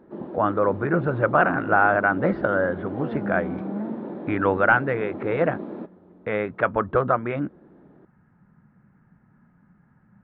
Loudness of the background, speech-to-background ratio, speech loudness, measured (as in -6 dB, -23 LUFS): -33.5 LUFS, 10.5 dB, -23.0 LUFS